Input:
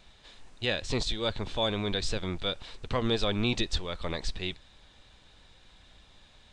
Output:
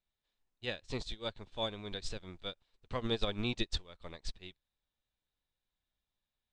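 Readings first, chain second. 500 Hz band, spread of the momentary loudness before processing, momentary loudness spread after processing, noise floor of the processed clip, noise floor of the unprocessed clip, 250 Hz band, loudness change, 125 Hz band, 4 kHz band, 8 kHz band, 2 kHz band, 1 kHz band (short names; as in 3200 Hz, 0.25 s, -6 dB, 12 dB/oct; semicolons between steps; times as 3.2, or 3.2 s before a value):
-8.5 dB, 7 LU, 12 LU, under -85 dBFS, -59 dBFS, -8.5 dB, -8.0 dB, -9.0 dB, -8.5 dB, -10.5 dB, -9.0 dB, -8.5 dB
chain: upward expander 2.5:1, over -44 dBFS; gain -3 dB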